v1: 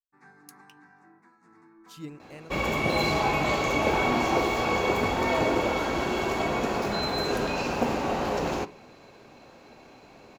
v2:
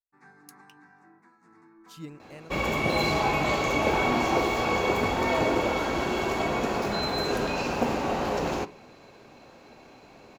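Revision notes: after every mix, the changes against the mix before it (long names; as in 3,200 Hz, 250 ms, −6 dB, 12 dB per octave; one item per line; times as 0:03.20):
speech: send off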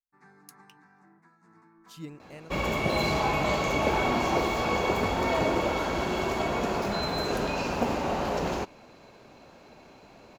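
reverb: off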